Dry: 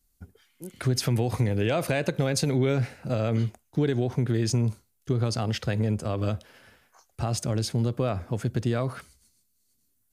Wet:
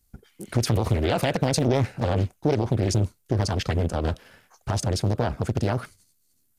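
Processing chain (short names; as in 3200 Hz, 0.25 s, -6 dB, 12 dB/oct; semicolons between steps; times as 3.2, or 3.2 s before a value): granular stretch 0.65×, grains 26 ms; Doppler distortion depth 0.82 ms; gain +4 dB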